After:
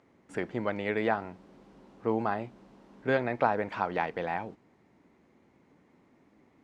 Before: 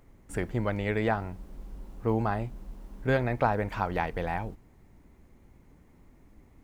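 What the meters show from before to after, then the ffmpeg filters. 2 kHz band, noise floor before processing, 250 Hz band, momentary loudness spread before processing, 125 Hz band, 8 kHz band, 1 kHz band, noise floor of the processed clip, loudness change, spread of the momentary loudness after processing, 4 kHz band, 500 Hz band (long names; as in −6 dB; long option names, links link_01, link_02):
0.0 dB, −58 dBFS, −2.0 dB, 19 LU, −10.0 dB, can't be measured, 0.0 dB, −65 dBFS, −1.0 dB, 10 LU, −1.0 dB, 0.0 dB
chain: -af "highpass=210,lowpass=5000"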